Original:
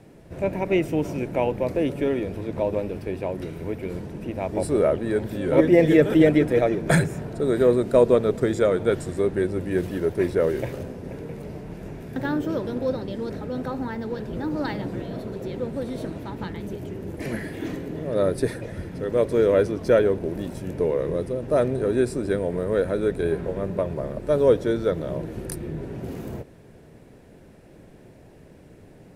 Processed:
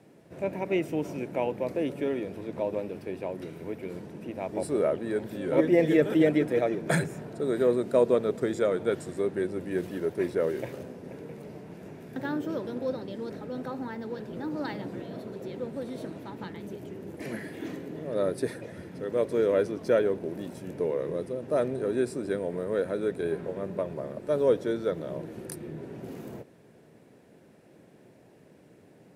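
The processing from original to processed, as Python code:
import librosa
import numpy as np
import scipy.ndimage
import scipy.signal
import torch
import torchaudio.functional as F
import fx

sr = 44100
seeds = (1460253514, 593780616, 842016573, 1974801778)

y = scipy.signal.sosfilt(scipy.signal.butter(2, 150.0, 'highpass', fs=sr, output='sos'), x)
y = F.gain(torch.from_numpy(y), -5.5).numpy()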